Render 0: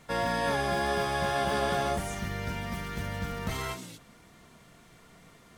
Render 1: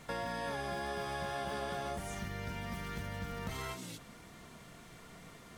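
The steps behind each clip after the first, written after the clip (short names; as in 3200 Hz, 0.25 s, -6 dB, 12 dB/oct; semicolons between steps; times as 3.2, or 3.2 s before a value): compressor 3:1, threshold -42 dBFS, peak gain reduction 13 dB; gain +2 dB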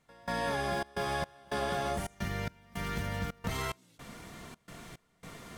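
step gate "..xxxx.xx" 109 bpm -24 dB; gain +6 dB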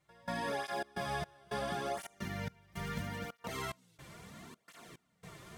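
tape flanging out of phase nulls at 0.74 Hz, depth 4.5 ms; gain -1.5 dB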